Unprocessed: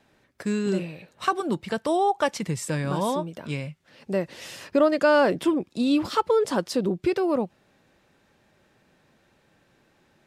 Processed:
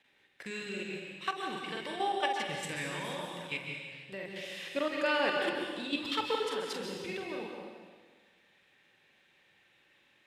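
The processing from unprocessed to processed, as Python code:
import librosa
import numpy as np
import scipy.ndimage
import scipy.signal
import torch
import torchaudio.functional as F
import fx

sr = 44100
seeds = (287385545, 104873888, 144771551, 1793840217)

y = fx.low_shelf(x, sr, hz=230.0, db=-12.0)
y = fx.notch(y, sr, hz=650.0, q=13.0)
y = fx.doubler(y, sr, ms=46.0, db=-4)
y = fx.level_steps(y, sr, step_db=11)
y = fx.band_shelf(y, sr, hz=2600.0, db=10.5, octaves=1.3)
y = fx.rev_plate(y, sr, seeds[0], rt60_s=1.5, hf_ratio=1.0, predelay_ms=120, drr_db=1.5)
y = y * 10.0 ** (-8.5 / 20.0)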